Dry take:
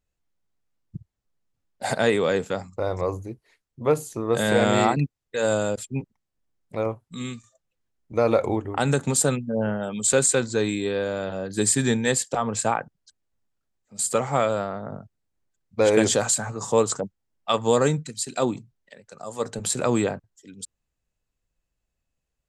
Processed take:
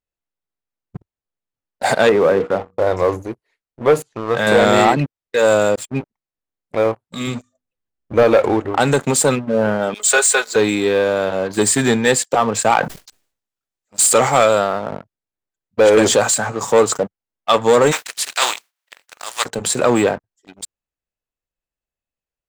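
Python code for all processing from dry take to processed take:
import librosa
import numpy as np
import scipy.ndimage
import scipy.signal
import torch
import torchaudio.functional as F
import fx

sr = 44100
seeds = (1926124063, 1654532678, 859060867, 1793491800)

y = fx.chain(x, sr, fx.lowpass(hz=1300.0, slope=12),
    fx.hum_notches(base_hz=60, count=8), at=(2.09, 2.87))
y = fx.chain(y, sr, fx.lowpass(hz=2900.0, slope=12),
    fx.peak_eq(hz=350.0, db=-8.5, octaves=1.6), at=(4.02, 4.47))
y = fx.chain(y, sr, fx.low_shelf(hz=300.0, db=8.5),
    fx.hum_notches(base_hz=50, count=9), at=(7.27, 8.23))
y = fx.chain(y, sr, fx.highpass(hz=530.0, slope=24),
    fx.comb(ms=4.8, depth=0.77), at=(9.94, 10.56))
y = fx.chain(y, sr, fx.high_shelf(hz=3000.0, db=10.5),
    fx.sustainer(db_per_s=89.0), at=(12.7, 14.83))
y = fx.spec_flatten(y, sr, power=0.39, at=(17.91, 19.44), fade=0.02)
y = fx.highpass(y, sr, hz=940.0, slope=12, at=(17.91, 19.44), fade=0.02)
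y = fx.leveller(y, sr, passes=3)
y = fx.bass_treble(y, sr, bass_db=-8, treble_db=-5)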